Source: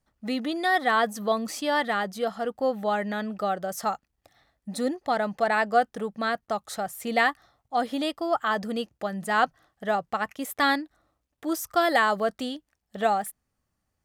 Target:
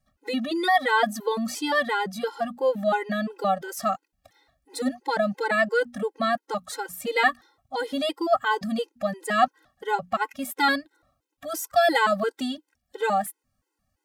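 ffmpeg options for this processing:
ffmpeg -i in.wav -af "bandreject=frequency=60:width_type=h:width=6,bandreject=frequency=120:width_type=h:width=6,bandreject=frequency=180:width_type=h:width=6,bandreject=frequency=240:width_type=h:width=6,afftfilt=real='re*gt(sin(2*PI*2.9*pts/sr)*(1-2*mod(floor(b*sr/1024/270),2)),0)':imag='im*gt(sin(2*PI*2.9*pts/sr)*(1-2*mod(floor(b*sr/1024/270),2)),0)':win_size=1024:overlap=0.75,volume=5dB" out.wav

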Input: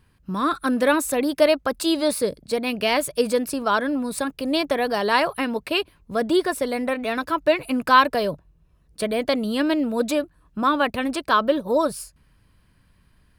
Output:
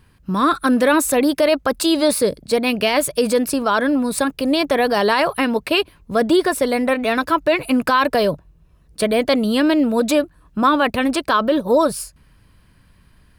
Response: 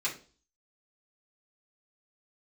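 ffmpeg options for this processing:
-af "alimiter=limit=-13.5dB:level=0:latency=1:release=29,volume=6.5dB"

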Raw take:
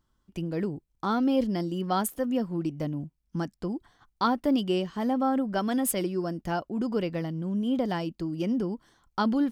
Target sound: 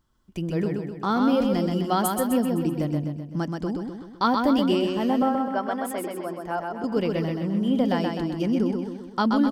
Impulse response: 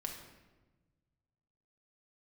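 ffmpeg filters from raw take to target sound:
-filter_complex "[0:a]asettb=1/sr,asplit=3[link_01][link_02][link_03];[link_01]atrim=end=5.224[link_04];[link_02]atrim=start=5.22:end=6.84,asetpts=PTS-STARTPTS,afade=type=in:duration=0.004:curve=qsin,afade=type=out:start_time=1.616:duration=0.004:curve=qsin,acrossover=split=420 2000:gain=0.2 1 0.224[link_05][link_06][link_07];[link_05][link_06][link_07]amix=inputs=3:normalize=0[link_08];[link_03]atrim=start=6.836[link_09];[link_04][link_08]acrossfade=duration=0.004:curve1=hsin:curve2=qsin[link_10];[link_10][link_09]acrossfade=duration=0.004:curve1=qsin:curve2=hsin,aecho=1:1:128|256|384|512|640|768|896:0.631|0.328|0.171|0.0887|0.0461|0.024|0.0125,volume=3dB"

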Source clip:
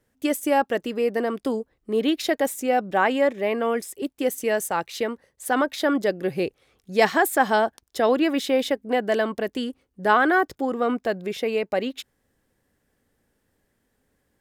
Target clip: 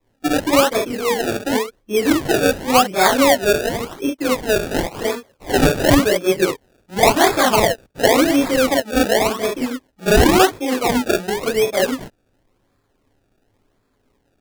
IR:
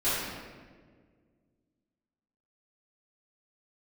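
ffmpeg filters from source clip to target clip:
-filter_complex "[0:a]asettb=1/sr,asplit=3[link_01][link_02][link_03];[link_01]atrim=end=5.564[link_04];[link_02]atrim=start=5.56:end=6.04,asetpts=PTS-STARTPTS,afade=type=in:duration=0.004:curve=qsin,afade=type=out:start_time=0.476:duration=0.004:curve=qsin,asplit=2[link_05][link_06];[link_06]highpass=frequency=720:poles=1,volume=12dB,asoftclip=type=tanh:threshold=-10dB[link_07];[link_05][link_07]amix=inputs=2:normalize=0,lowpass=frequency=7000:poles=1,volume=-6dB[link_08];[link_03]atrim=start=6.036[link_09];[link_04][link_08]acrossfade=duration=0.004:curve1=hsin:curve2=qsin[link_10];[link_10][link_09]acrossfade=duration=0.004:curve1=qsin:curve2=hsin[link_11];[1:a]atrim=start_sample=2205,atrim=end_sample=3528[link_12];[link_11][link_12]afir=irnorm=-1:irlink=0,acrusher=samples=29:mix=1:aa=0.000001:lfo=1:lforange=29:lforate=0.92,volume=-3.5dB"

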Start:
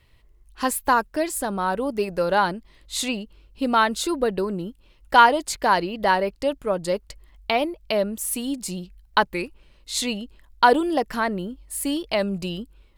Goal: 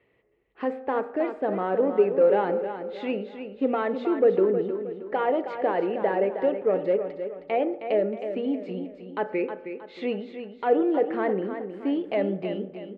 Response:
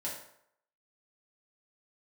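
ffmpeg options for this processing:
-filter_complex "[0:a]alimiter=limit=-13dB:level=0:latency=1:release=73,asoftclip=type=tanh:threshold=-16.5dB,highpass=260,equalizer=frequency=430:width_type=q:width=4:gain=8,equalizer=frequency=1000:width_type=q:width=4:gain=-10,equalizer=frequency=1500:width_type=q:width=4:gain=-8,lowpass=frequency=2200:width=0.5412,lowpass=frequency=2200:width=1.3066,aecho=1:1:315|630|945|1260:0.355|0.138|0.054|0.021,asplit=2[link_01][link_02];[1:a]atrim=start_sample=2205,asetrate=37926,aresample=44100,lowpass=2500[link_03];[link_02][link_03]afir=irnorm=-1:irlink=0,volume=-11dB[link_04];[link_01][link_04]amix=inputs=2:normalize=0"

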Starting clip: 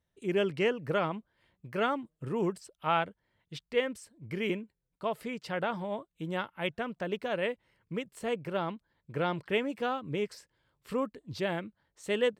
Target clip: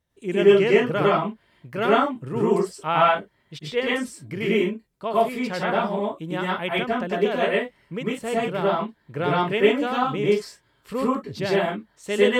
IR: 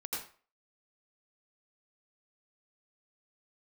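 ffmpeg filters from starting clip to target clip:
-filter_complex "[1:a]atrim=start_sample=2205,atrim=end_sample=6174,asetrate=37044,aresample=44100[link_01];[0:a][link_01]afir=irnorm=-1:irlink=0,volume=8dB"

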